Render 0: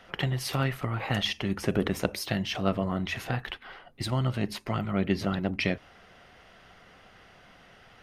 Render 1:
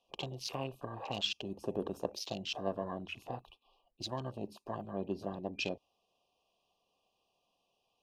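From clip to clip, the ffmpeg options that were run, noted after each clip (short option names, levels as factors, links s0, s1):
-af "afftfilt=real='re*(1-between(b*sr/4096,1200,2400))':imag='im*(1-between(b*sr/4096,1200,2400))':win_size=4096:overlap=0.75,afwtdn=0.0126,bass=f=250:g=-12,treble=f=4000:g=4,volume=0.531"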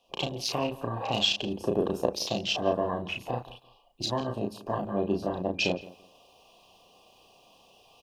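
-filter_complex "[0:a]asplit=2[s0][s1];[s1]adelay=34,volume=0.631[s2];[s0][s2]amix=inputs=2:normalize=0,areverse,acompressor=mode=upward:threshold=0.00158:ratio=2.5,areverse,asplit=2[s3][s4];[s4]adelay=169,lowpass=f=2500:p=1,volume=0.126,asplit=2[s5][s6];[s6]adelay=169,lowpass=f=2500:p=1,volume=0.23[s7];[s3][s5][s7]amix=inputs=3:normalize=0,volume=2.66"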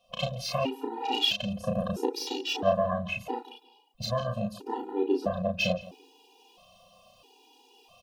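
-filter_complex "[0:a]acrossover=split=3800[s0][s1];[s1]asoftclip=type=tanh:threshold=0.02[s2];[s0][s2]amix=inputs=2:normalize=0,afftfilt=real='re*gt(sin(2*PI*0.76*pts/sr)*(1-2*mod(floor(b*sr/1024/250),2)),0)':imag='im*gt(sin(2*PI*0.76*pts/sr)*(1-2*mod(floor(b*sr/1024/250),2)),0)':win_size=1024:overlap=0.75,volume=1.5"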